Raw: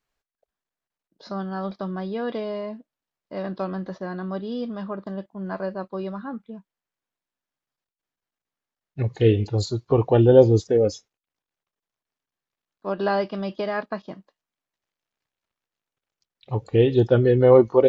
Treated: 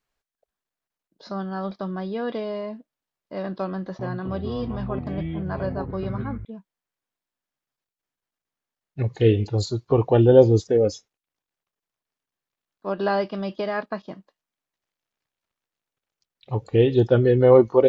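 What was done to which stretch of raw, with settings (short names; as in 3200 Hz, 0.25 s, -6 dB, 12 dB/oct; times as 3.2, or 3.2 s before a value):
3.71–6.45 echoes that change speed 0.28 s, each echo -7 st, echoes 3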